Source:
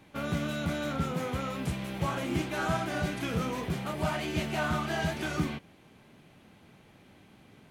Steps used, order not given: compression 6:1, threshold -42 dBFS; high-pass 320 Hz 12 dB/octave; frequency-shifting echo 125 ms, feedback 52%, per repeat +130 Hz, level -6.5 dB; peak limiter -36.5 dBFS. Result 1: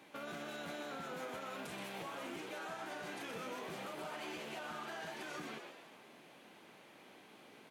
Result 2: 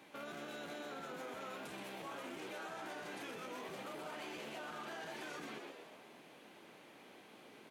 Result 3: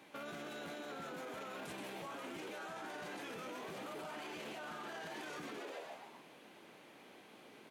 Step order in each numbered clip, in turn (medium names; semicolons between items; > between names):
high-pass > compression > peak limiter > frequency-shifting echo; peak limiter > frequency-shifting echo > high-pass > compression; frequency-shifting echo > high-pass > peak limiter > compression